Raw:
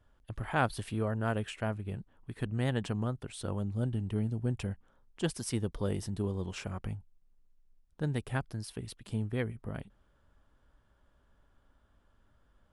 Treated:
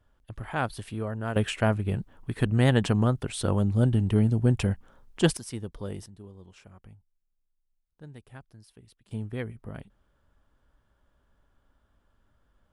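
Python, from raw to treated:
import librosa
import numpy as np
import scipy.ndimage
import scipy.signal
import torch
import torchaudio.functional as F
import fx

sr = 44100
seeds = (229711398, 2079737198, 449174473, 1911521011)

y = fx.gain(x, sr, db=fx.steps((0.0, 0.0), (1.36, 10.0), (5.37, -3.0), (6.06, -13.0), (9.11, -0.5)))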